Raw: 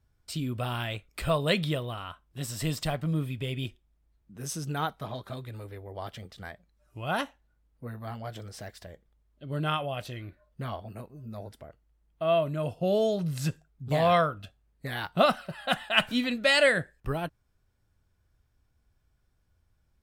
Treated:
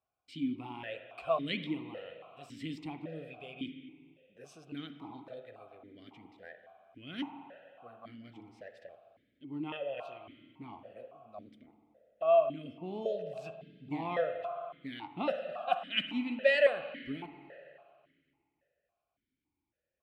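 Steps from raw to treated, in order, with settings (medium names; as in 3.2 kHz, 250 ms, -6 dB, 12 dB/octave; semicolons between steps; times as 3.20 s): spring tank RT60 2.3 s, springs 43/56 ms, chirp 45 ms, DRR 8 dB; stepped vowel filter 3.6 Hz; trim +3.5 dB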